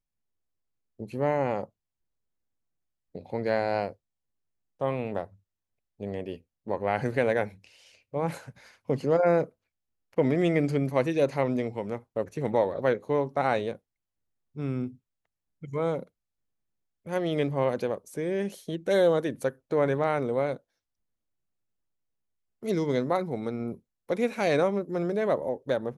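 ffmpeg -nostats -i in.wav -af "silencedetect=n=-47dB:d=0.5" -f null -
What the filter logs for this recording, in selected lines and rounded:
silence_start: 0.00
silence_end: 0.99 | silence_duration: 0.99
silence_start: 1.65
silence_end: 3.15 | silence_duration: 1.49
silence_start: 3.93
silence_end: 4.81 | silence_duration: 0.88
silence_start: 5.26
silence_end: 6.00 | silence_duration: 0.74
silence_start: 9.49
silence_end: 10.13 | silence_duration: 0.64
silence_start: 13.76
silence_end: 14.56 | silence_duration: 0.79
silence_start: 14.95
silence_end: 15.62 | silence_duration: 0.67
silence_start: 16.07
silence_end: 17.06 | silence_duration: 0.99
silence_start: 20.57
silence_end: 22.63 | silence_duration: 2.05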